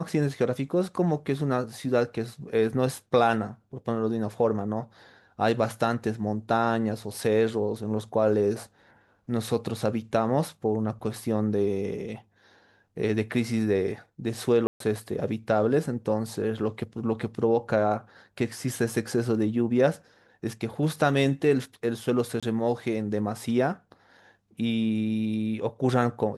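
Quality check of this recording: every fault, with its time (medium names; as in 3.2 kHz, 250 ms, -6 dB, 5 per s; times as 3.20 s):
14.67–14.80 s: dropout 133 ms
22.40–22.43 s: dropout 26 ms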